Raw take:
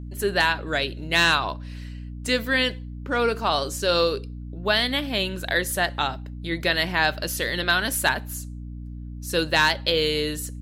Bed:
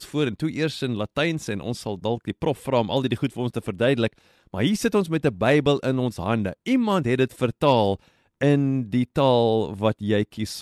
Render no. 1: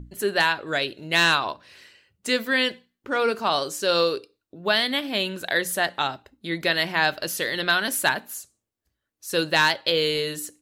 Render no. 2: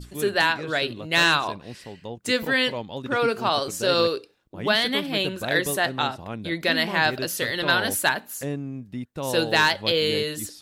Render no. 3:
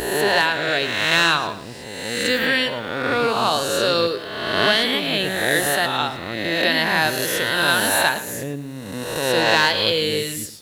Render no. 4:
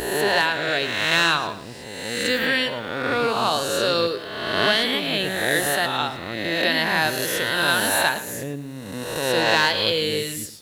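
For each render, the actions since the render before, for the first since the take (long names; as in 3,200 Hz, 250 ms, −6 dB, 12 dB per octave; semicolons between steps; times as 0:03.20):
mains-hum notches 60/120/180/240/300 Hz
mix in bed −11 dB
peak hold with a rise ahead of every peak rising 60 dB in 1.39 s; feedback echo at a low word length 112 ms, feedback 35%, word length 7 bits, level −13.5 dB
level −2 dB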